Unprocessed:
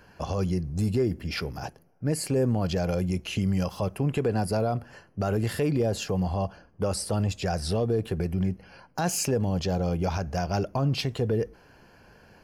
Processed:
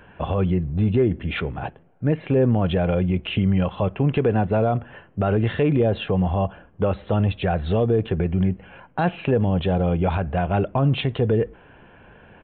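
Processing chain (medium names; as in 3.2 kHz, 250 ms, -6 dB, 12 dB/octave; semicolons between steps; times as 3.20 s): resampled via 8 kHz; trim +6 dB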